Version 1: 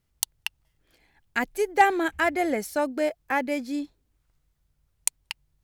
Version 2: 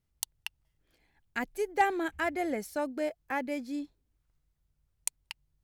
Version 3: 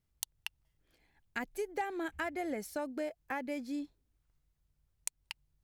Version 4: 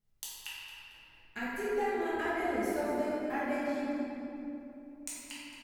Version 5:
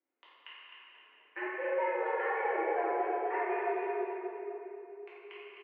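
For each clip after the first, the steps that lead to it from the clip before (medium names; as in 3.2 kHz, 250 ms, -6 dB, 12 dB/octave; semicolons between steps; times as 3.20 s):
bass shelf 370 Hz +3.5 dB; trim -8 dB
compression 6:1, threshold -32 dBFS, peak gain reduction 11.5 dB; trim -1 dB
feedback delay 227 ms, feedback 26%, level -11 dB; simulated room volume 150 m³, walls hard, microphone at 1.4 m; trim -6.5 dB
feedback delay 259 ms, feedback 38%, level -7.5 dB; mistuned SSB +120 Hz 190–2400 Hz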